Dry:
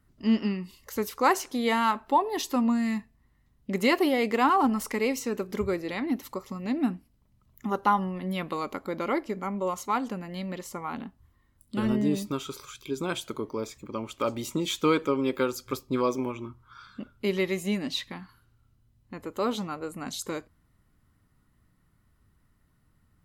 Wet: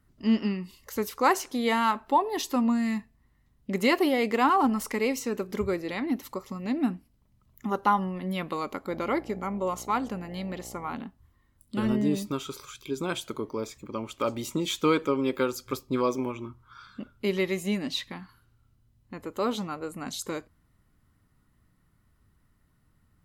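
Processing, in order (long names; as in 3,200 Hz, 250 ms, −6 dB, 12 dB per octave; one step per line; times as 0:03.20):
0:08.88–0:10.94: hum with harmonics 60 Hz, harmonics 14, −48 dBFS −2 dB per octave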